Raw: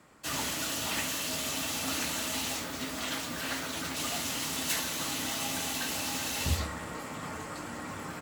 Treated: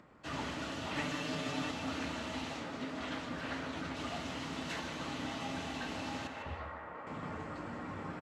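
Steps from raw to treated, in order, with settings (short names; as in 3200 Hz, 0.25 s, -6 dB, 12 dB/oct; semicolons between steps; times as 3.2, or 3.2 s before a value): 0.95–1.71 comb 6.8 ms, depth 97%; 2.44–3 HPF 110 Hz; 6.27–7.07 three-band isolator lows -14 dB, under 470 Hz, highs -19 dB, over 2500 Hz; upward compressor, threshold -53 dBFS; tape spacing loss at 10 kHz 27 dB; echo 0.152 s -10.5 dB; gain -1 dB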